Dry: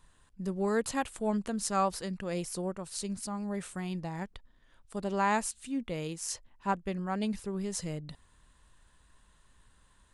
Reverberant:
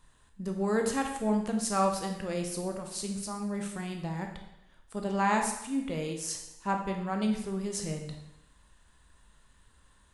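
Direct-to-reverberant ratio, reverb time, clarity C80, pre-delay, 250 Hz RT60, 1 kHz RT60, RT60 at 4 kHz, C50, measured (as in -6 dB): 3.0 dB, 0.90 s, 9.0 dB, 7 ms, 0.80 s, 0.90 s, 0.80 s, 6.0 dB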